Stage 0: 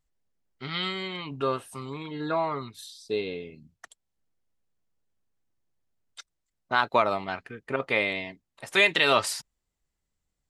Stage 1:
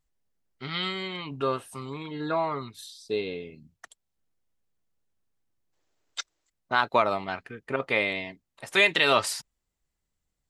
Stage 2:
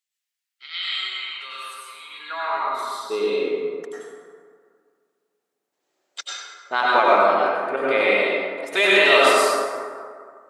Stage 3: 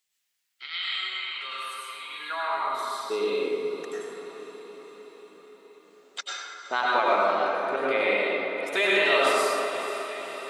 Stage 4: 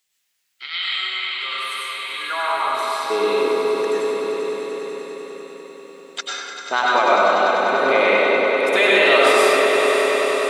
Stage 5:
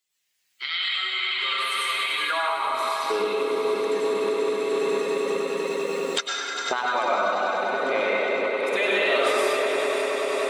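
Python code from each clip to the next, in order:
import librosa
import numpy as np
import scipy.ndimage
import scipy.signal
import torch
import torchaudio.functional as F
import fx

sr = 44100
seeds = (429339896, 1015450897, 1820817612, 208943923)

y1 = fx.spec_box(x, sr, start_s=5.73, length_s=0.77, low_hz=270.0, high_hz=8000.0, gain_db=11)
y2 = fx.filter_sweep_highpass(y1, sr, from_hz=2500.0, to_hz=380.0, start_s=2.08, end_s=2.9, q=1.2)
y2 = fx.rev_plate(y2, sr, seeds[0], rt60_s=2.0, hf_ratio=0.45, predelay_ms=80, drr_db=-7.0)
y3 = fx.echo_diffused(y2, sr, ms=481, feedback_pct=50, wet_db=-15)
y3 = fx.band_squash(y3, sr, depth_pct=40)
y3 = y3 * 10.0 ** (-5.0 / 20.0)
y4 = fx.echo_swell(y3, sr, ms=98, loudest=5, wet_db=-12)
y4 = y4 * 10.0 ** (6.5 / 20.0)
y5 = fx.spec_quant(y4, sr, step_db=15)
y5 = fx.recorder_agc(y5, sr, target_db=-8.5, rise_db_per_s=17.0, max_gain_db=30)
y5 = fx.echo_thinned(y5, sr, ms=847, feedback_pct=68, hz=420.0, wet_db=-19.5)
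y5 = y5 * 10.0 ** (-7.5 / 20.0)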